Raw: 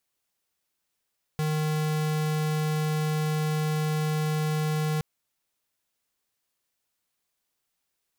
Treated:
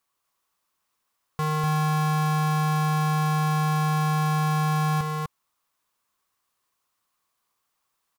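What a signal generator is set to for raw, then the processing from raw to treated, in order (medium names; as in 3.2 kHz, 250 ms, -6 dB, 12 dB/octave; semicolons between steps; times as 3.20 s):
tone square 154 Hz -26.5 dBFS 3.62 s
peaking EQ 1.1 kHz +13.5 dB 0.55 oct; on a send: delay 248 ms -3.5 dB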